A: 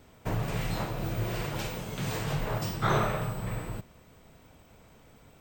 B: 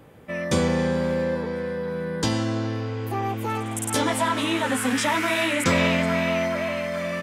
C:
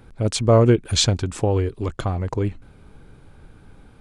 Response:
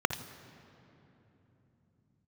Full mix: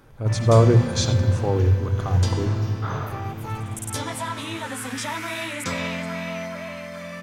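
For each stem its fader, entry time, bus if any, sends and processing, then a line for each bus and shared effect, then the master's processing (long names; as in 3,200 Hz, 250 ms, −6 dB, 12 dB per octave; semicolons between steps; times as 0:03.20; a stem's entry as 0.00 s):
−9.5 dB, 0.00 s, send −3 dB, no processing
−3.0 dB, 0.00 s, send −20 dB, mains-hum notches 50/100/150/200/250/300/350 Hz
+0.5 dB, 0.00 s, send −8 dB, harmonic and percussive parts rebalanced percussive −7 dB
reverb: on, RT60 3.4 s, pre-delay 54 ms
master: parametric band 510 Hz −8 dB 2.7 octaves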